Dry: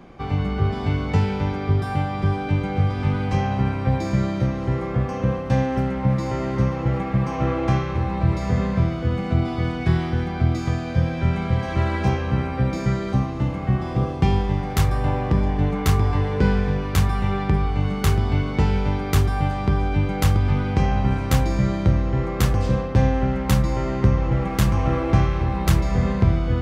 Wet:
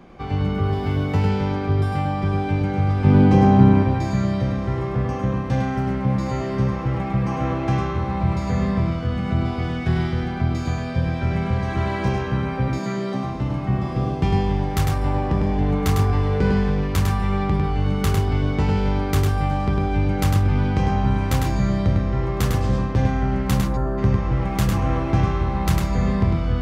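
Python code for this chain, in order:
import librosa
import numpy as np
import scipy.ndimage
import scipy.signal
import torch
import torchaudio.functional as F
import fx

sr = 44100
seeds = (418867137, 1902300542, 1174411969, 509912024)

p1 = fx.median_filter(x, sr, points=5, at=(0.54, 1.2))
p2 = fx.spec_box(p1, sr, start_s=23.67, length_s=0.31, low_hz=1800.0, high_hz=9200.0, gain_db=-19)
p3 = np.clip(p2, -10.0 ** (-18.0 / 20.0), 10.0 ** (-18.0 / 20.0))
p4 = p2 + F.gain(torch.from_numpy(p3), -10.0).numpy()
p5 = fx.peak_eq(p4, sr, hz=270.0, db=11.5, octaves=2.7, at=(3.04, 3.83))
p6 = fx.highpass(p5, sr, hz=170.0, slope=24, at=(12.68, 13.24))
p7 = p6 + fx.echo_single(p6, sr, ms=102, db=-4.0, dry=0)
y = F.gain(torch.from_numpy(p7), -3.5).numpy()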